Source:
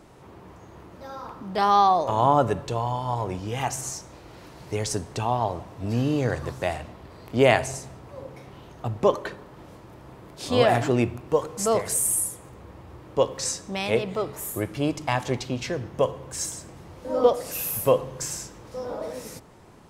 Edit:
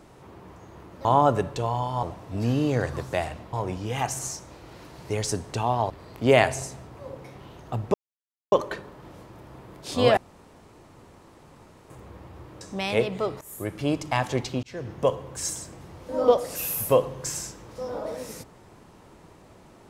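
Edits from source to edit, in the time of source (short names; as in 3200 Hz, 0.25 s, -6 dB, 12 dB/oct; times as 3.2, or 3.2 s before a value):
1.05–2.17 cut
5.52–7.02 move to 3.15
9.06 insert silence 0.58 s
10.71–12.44 room tone
13.15–13.57 cut
14.37–14.94 fade in equal-power, from -17.5 dB
15.59–15.89 fade in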